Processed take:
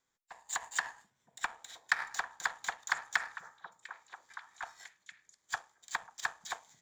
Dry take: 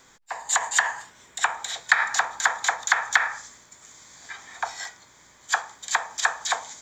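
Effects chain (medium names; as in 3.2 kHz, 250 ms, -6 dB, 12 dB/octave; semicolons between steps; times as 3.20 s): power-law waveshaper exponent 1.4; repeats whose band climbs or falls 484 ms, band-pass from 160 Hz, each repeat 1.4 oct, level -5 dB; trim -8.5 dB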